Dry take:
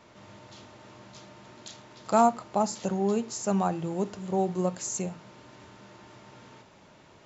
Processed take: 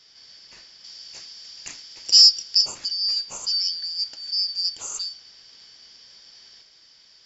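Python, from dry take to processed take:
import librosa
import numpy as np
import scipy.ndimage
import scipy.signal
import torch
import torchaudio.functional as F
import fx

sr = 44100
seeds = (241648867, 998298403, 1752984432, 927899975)

y = fx.band_shuffle(x, sr, order='4321')
y = fx.high_shelf(y, sr, hz=4200.0, db=11.0, at=(0.84, 2.61))
y = y * librosa.db_to_amplitude(1.5)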